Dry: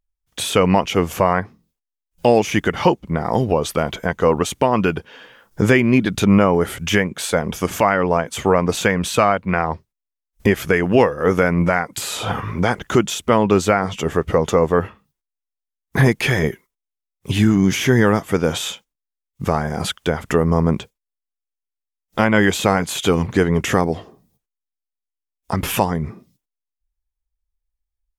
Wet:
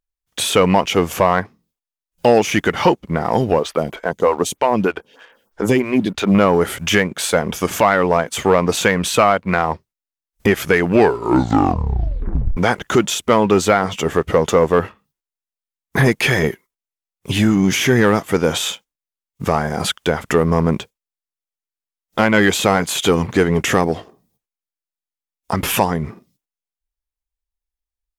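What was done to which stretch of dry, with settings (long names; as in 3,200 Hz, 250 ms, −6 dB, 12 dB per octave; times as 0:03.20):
0:03.59–0:06.35: phaser with staggered stages 3.2 Hz
0:10.83: tape stop 1.74 s
whole clip: leveller curve on the samples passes 1; low-shelf EQ 170 Hz −6.5 dB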